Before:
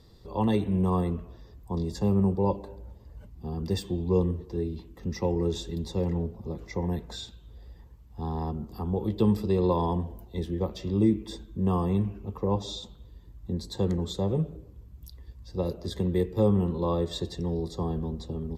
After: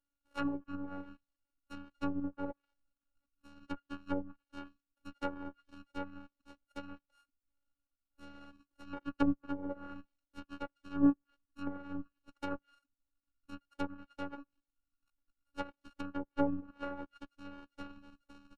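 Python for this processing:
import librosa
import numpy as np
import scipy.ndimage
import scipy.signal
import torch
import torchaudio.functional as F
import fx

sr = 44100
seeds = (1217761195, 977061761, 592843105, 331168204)

y = np.r_[np.sort(x[:len(x) // 32 * 32].reshape(-1, 32), axis=1).ravel(), x[len(x) // 32 * 32:]]
y = fx.env_lowpass_down(y, sr, base_hz=590.0, full_db=-19.5)
y = fx.dereverb_blind(y, sr, rt60_s=0.56)
y = fx.robotise(y, sr, hz=282.0)
y = fx.upward_expand(y, sr, threshold_db=-45.0, expansion=2.5)
y = F.gain(torch.from_numpy(y), 1.5).numpy()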